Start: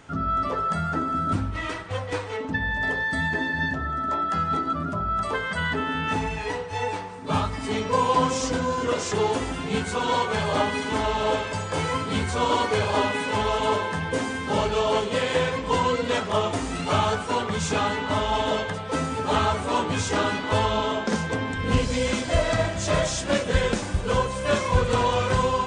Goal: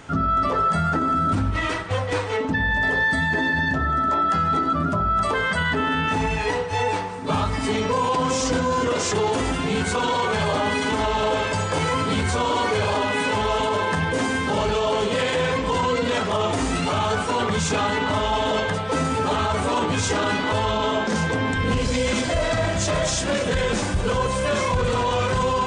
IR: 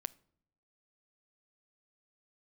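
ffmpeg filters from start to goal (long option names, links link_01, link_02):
-af "alimiter=limit=-20.5dB:level=0:latency=1:release=24,volume=6.5dB"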